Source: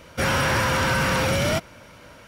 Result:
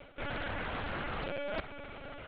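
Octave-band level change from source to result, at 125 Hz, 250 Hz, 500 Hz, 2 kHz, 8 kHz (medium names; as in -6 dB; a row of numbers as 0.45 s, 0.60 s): -19.0 dB, -16.0 dB, -14.0 dB, -16.0 dB, under -40 dB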